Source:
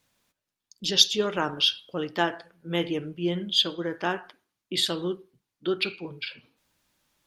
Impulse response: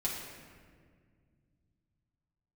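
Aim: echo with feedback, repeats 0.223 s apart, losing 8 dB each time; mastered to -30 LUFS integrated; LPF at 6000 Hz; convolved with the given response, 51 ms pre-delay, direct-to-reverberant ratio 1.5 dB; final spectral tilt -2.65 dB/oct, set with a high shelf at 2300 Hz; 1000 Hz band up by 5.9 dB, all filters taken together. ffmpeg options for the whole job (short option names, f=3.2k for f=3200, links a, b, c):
-filter_complex "[0:a]lowpass=6k,equalizer=f=1k:t=o:g=8.5,highshelf=f=2.3k:g=-5.5,aecho=1:1:223|446|669|892|1115:0.398|0.159|0.0637|0.0255|0.0102,asplit=2[a][b];[1:a]atrim=start_sample=2205,adelay=51[c];[b][c]afir=irnorm=-1:irlink=0,volume=-5.5dB[d];[a][d]amix=inputs=2:normalize=0,volume=-5.5dB"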